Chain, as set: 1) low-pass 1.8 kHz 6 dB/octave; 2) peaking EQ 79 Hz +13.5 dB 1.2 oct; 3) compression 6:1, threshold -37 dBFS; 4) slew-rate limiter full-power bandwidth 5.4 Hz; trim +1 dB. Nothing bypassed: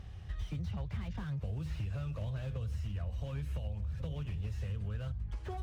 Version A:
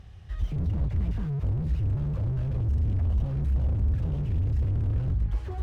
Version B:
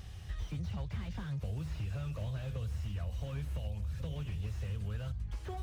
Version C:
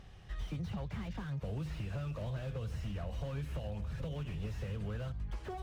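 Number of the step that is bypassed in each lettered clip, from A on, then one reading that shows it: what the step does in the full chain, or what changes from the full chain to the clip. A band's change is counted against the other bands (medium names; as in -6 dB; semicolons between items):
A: 3, mean gain reduction 14.0 dB; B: 1, 4 kHz band +2.5 dB; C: 2, 125 Hz band -4.5 dB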